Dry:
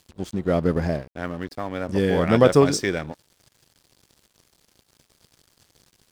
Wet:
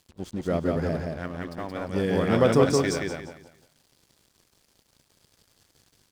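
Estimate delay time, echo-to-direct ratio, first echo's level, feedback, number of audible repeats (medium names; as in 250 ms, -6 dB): 174 ms, -2.5 dB, -3.0 dB, 29%, 3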